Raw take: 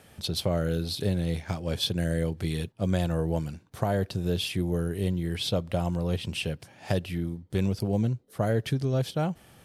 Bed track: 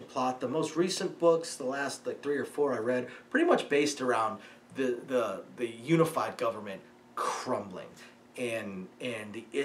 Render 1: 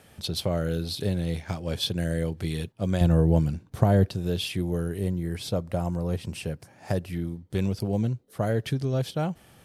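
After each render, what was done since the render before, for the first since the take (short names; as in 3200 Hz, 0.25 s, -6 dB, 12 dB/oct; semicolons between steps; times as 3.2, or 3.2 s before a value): 3.01–4.09 low shelf 430 Hz +9.5 dB; 4.99–7.13 bell 3200 Hz -9.5 dB 0.88 oct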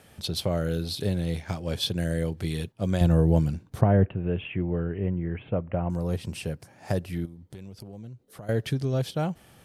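3.81–5.9 steep low-pass 2900 Hz 72 dB/oct; 7.25–8.49 compressor 5:1, threshold -40 dBFS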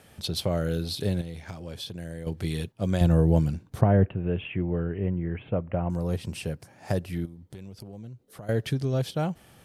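1.21–2.27 compressor 3:1, threshold -36 dBFS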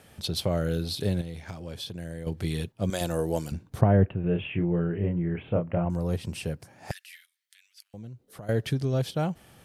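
2.9–3.52 tone controls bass -15 dB, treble +10 dB; 4.21–5.85 doubler 29 ms -4.5 dB; 6.91–7.94 steep high-pass 1700 Hz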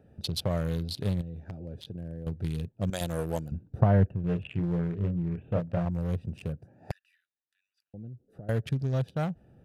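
Wiener smoothing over 41 samples; dynamic EQ 340 Hz, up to -7 dB, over -42 dBFS, Q 1.3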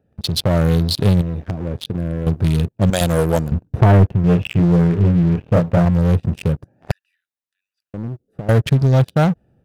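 sample leveller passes 3; AGC gain up to 5 dB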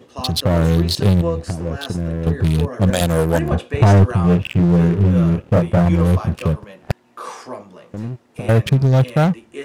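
add bed track +0.5 dB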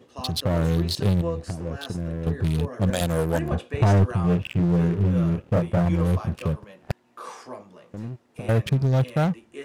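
gain -7 dB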